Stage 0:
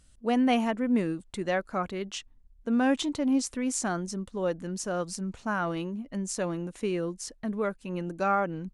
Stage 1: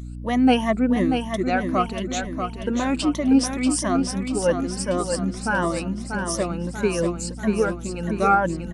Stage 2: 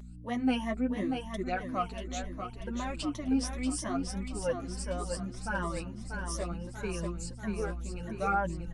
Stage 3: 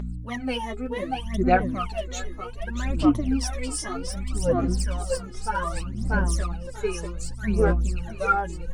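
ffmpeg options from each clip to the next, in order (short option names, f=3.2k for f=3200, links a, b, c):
-filter_complex "[0:a]afftfilt=real='re*pow(10,16/40*sin(2*PI*(1.2*log(max(b,1)*sr/1024/100)/log(2)-(2.8)*(pts-256)/sr)))':imag='im*pow(10,16/40*sin(2*PI*(1.2*log(max(b,1)*sr/1024/100)/log(2)-(2.8)*(pts-256)/sr)))':win_size=1024:overlap=0.75,aeval=exprs='val(0)+0.0158*(sin(2*PI*60*n/s)+sin(2*PI*2*60*n/s)/2+sin(2*PI*3*60*n/s)/3+sin(2*PI*4*60*n/s)/4+sin(2*PI*5*60*n/s)/5)':c=same,asplit=2[a][b];[b]aecho=0:1:638|1276|1914|2552|3190|3828:0.473|0.246|0.128|0.0665|0.0346|0.018[c];[a][c]amix=inputs=2:normalize=0,volume=3.5dB"
-af "flanger=delay=4.9:depth=7.8:regen=1:speed=0.71:shape=sinusoidal,asubboost=boost=4.5:cutoff=96,volume=-8dB"
-af "aphaser=in_gain=1:out_gain=1:delay=2.4:decay=0.79:speed=0.65:type=sinusoidal,volume=2dB"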